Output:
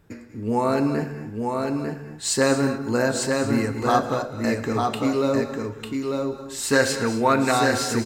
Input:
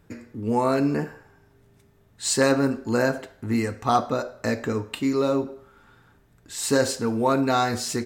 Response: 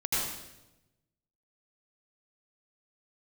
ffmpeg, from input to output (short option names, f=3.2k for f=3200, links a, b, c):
-filter_complex "[0:a]asettb=1/sr,asplit=3[a][b][c];[a]atrim=end=6.714[d];[b]atrim=start=6.71:end=7.52,asetpts=PTS-STARTPTS,afade=t=in:d=0.004:c=qsin,afade=t=out:st=0.806:d=0.004:c=qsin,equalizer=f=2k:t=o:w=1.5:g=9.5[e];[c]atrim=start=7.516[f];[d][e]acrossfade=d=0.004:c1=hsin:c2=qsin[g];[g][f]acrossfade=d=0.004:c1=qsin:c2=hsin,aecho=1:1:898:0.631,asplit=2[h][i];[1:a]atrim=start_sample=2205,afade=t=out:st=0.21:d=0.01,atrim=end_sample=9702,adelay=110[j];[i][j]afir=irnorm=-1:irlink=0,volume=-17.5dB[k];[h][k]amix=inputs=2:normalize=0"